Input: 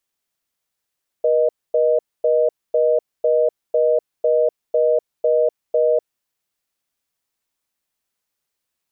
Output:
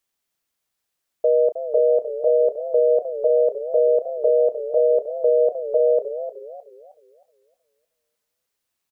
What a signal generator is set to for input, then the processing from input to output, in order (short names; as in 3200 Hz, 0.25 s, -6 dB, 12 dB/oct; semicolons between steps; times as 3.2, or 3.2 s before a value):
call progress tone reorder tone, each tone -16 dBFS 4.99 s
doubler 33 ms -13 dB; warbling echo 0.309 s, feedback 36%, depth 146 cents, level -11.5 dB